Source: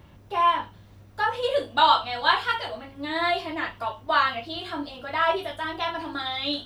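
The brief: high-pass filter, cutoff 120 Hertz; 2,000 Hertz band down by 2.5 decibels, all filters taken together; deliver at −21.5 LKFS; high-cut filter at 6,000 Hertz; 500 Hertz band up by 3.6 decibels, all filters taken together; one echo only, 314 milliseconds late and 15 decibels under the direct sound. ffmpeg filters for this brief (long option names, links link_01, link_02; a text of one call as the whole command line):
ffmpeg -i in.wav -af "highpass=120,lowpass=6000,equalizer=frequency=500:width_type=o:gain=5,equalizer=frequency=2000:width_type=o:gain=-3.5,aecho=1:1:314:0.178,volume=3.5dB" out.wav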